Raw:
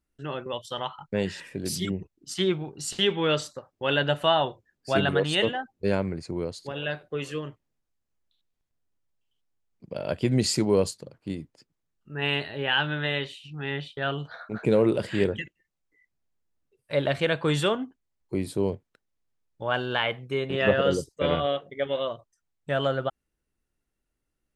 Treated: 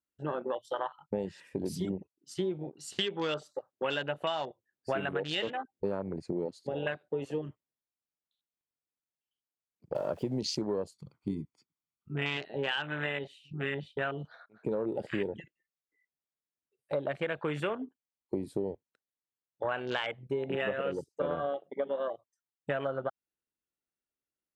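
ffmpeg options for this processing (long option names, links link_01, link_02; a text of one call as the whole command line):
ffmpeg -i in.wav -filter_complex "[0:a]asettb=1/sr,asplit=3[link_01][link_02][link_03];[link_01]atrim=end=9.954[link_04];[link_02]atrim=start=9.95:end=10.4,asetpts=PTS-STARTPTS,afade=type=in:duration=0.004:curve=qsin,afade=type=out:start_time=0.446:duration=0.004:curve=qsin,aeval=exprs='val(0)+0.5*0.0168*sgn(val(0))':channel_layout=same[link_05];[link_03]atrim=start=10.396[link_06];[link_04][link_05]acrossfade=duration=0.004:curve1=hsin:curve2=qsin[link_07];[link_07][link_06]acrossfade=duration=0.004:curve1=qsin:curve2=hsin,asettb=1/sr,asplit=3[link_08][link_09][link_10];[link_08]atrim=end=10.944[link_11];[link_09]atrim=start=10.94:end=12.37,asetpts=PTS-STARTPTS,afade=type=in:duration=0.004:curve=qsin,afade=type=out:start_time=1.426:duration=0.004:curve=qsin,aecho=1:1:0.9:0.68,atrim=end_sample=63063[link_12];[link_10]atrim=start=12.366[link_13];[link_11][link_12]acrossfade=duration=0.004:curve1=hsin:curve2=qsin[link_14];[link_14][link_13]acrossfade=duration=0.004:curve1=qsin:curve2=hsin,asplit=2[link_15][link_16];[link_15]atrim=end=14.46,asetpts=PTS-STARTPTS,afade=type=out:start_time=14.456:duration=0.004:curve=hsin:silence=0.0891251[link_17];[link_16]atrim=start=14.46,asetpts=PTS-STARTPTS,afade=type=in:duration=0.92:curve=qsin:silence=0.0891251[link_18];[link_17][link_18]concat=n=2:v=0:a=1,highpass=frequency=270:poles=1,afwtdn=0.0251,acompressor=threshold=-34dB:ratio=10,volume=5dB" out.wav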